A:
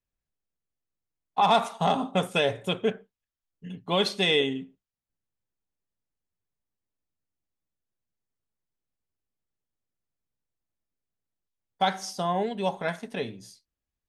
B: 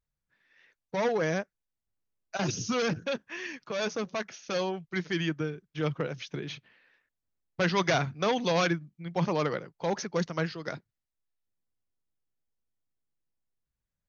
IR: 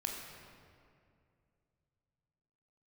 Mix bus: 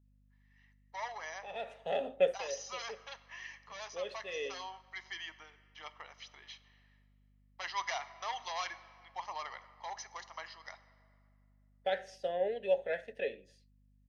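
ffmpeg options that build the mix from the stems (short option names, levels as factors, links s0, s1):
-filter_complex "[0:a]acontrast=24,asplit=3[s0][s1][s2];[s0]bandpass=f=530:t=q:w=8,volume=1[s3];[s1]bandpass=f=1840:t=q:w=8,volume=0.501[s4];[s2]bandpass=f=2480:t=q:w=8,volume=0.355[s5];[s3][s4][s5]amix=inputs=3:normalize=0,adelay=50,volume=1.06[s6];[1:a]highpass=f=600:w=0.5412,highpass=f=600:w=1.3066,aecho=1:1:1:0.69,volume=0.266,asplit=3[s7][s8][s9];[s8]volume=0.282[s10];[s9]apad=whole_len=623491[s11];[s6][s11]sidechaincompress=threshold=0.002:ratio=8:attack=5.1:release=555[s12];[2:a]atrim=start_sample=2205[s13];[s10][s13]afir=irnorm=-1:irlink=0[s14];[s12][s7][s14]amix=inputs=3:normalize=0,lowshelf=f=210:g=-7,aeval=exprs='val(0)+0.000501*(sin(2*PI*50*n/s)+sin(2*PI*2*50*n/s)/2+sin(2*PI*3*50*n/s)/3+sin(2*PI*4*50*n/s)/4+sin(2*PI*5*50*n/s)/5)':c=same"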